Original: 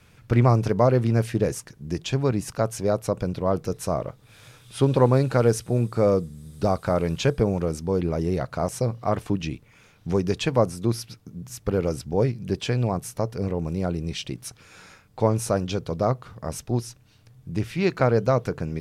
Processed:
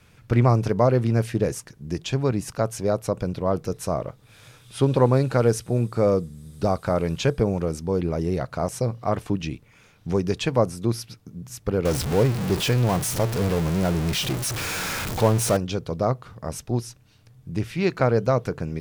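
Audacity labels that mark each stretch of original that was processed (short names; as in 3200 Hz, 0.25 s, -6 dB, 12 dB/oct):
11.850000	15.570000	zero-crossing step of -23 dBFS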